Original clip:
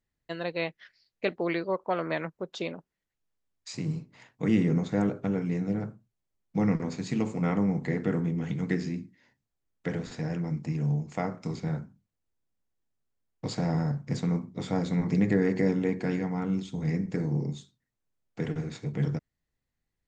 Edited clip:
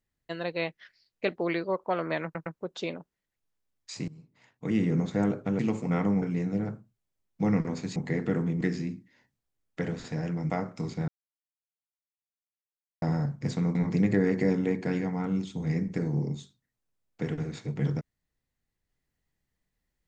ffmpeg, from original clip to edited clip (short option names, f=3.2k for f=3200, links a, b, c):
-filter_complex "[0:a]asplit=12[a][b][c][d][e][f][g][h][i][j][k][l];[a]atrim=end=2.352[m];[b]atrim=start=2.238:end=2.352[n];[c]atrim=start=2.238:end=3.86,asetpts=PTS-STARTPTS,afade=t=out:st=1.618:d=0.004:c=hsin:silence=0.0749894[o];[d]atrim=start=3.86:end=5.372,asetpts=PTS-STARTPTS,afade=t=in:d=0.96:silence=0.0749894[p];[e]atrim=start=7.108:end=7.742[q];[f]atrim=start=5.368:end=7.112[r];[g]atrim=start=7.738:end=8.392[s];[h]atrim=start=8.678:end=10.572[t];[i]atrim=start=11.158:end=11.74,asetpts=PTS-STARTPTS,afade=t=out:st=0.578:d=0.004:c=hsin[u];[j]atrim=start=11.74:end=13.68,asetpts=PTS-STARTPTS,volume=0[v];[k]atrim=start=13.68:end=14.412,asetpts=PTS-STARTPTS,afade=t=in:d=0.004:c=hsin[w];[l]atrim=start=14.928[x];[m][n]acrossfade=d=0.004:c1=hsin:c2=hsin[y];[o][p]concat=n=2:v=0:a=1[z];[y][z]acrossfade=d=0.004:c1=hsin:c2=hsin[aa];[aa][q]acrossfade=d=0.004:c1=hsin:c2=hsin[ab];[ab][r]acrossfade=d=0.004:c1=hsin:c2=hsin[ac];[ac][s]acrossfade=d=0.004:c1=hsin:c2=hsin[ad];[ad][t]acrossfade=d=0.004:c1=hsin:c2=hsin[ae];[u][v][w]concat=n=3:v=0:a=1[af];[ae][af]acrossfade=d=0.004:c1=hsin:c2=hsin[ag];[ag][x]acrossfade=d=0.004:c1=hsin:c2=hsin"